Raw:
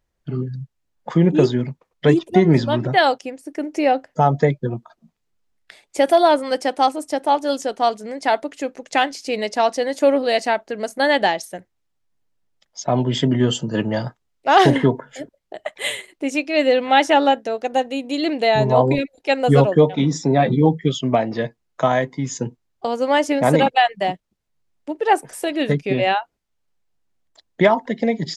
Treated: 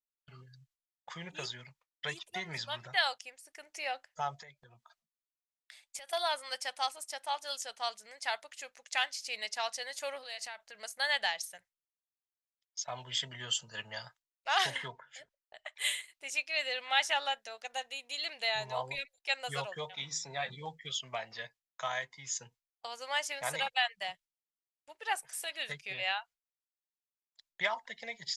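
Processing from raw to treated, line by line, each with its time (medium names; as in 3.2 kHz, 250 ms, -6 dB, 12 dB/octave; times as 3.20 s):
4.39–6.13 s: compression 4:1, threshold -29 dBFS
10.23–10.75 s: compression, threshold -24 dBFS
14.88–15.78 s: distance through air 75 m
19.95–20.50 s: de-hum 157.6 Hz, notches 16
whole clip: bass shelf 410 Hz -11.5 dB; gate with hold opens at -40 dBFS; amplifier tone stack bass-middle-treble 10-0-10; trim -4.5 dB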